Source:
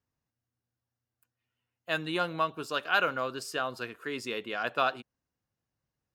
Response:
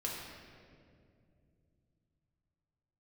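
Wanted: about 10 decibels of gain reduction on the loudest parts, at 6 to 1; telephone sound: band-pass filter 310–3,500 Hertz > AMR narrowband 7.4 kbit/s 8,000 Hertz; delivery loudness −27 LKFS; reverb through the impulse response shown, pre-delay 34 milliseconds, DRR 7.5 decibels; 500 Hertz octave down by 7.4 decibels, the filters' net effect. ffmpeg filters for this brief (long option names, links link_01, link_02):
-filter_complex "[0:a]equalizer=frequency=500:width_type=o:gain=-9,acompressor=threshold=-34dB:ratio=6,asplit=2[link_01][link_02];[1:a]atrim=start_sample=2205,adelay=34[link_03];[link_02][link_03]afir=irnorm=-1:irlink=0,volume=-10dB[link_04];[link_01][link_04]amix=inputs=2:normalize=0,highpass=310,lowpass=3500,volume=13.5dB" -ar 8000 -c:a libopencore_amrnb -b:a 7400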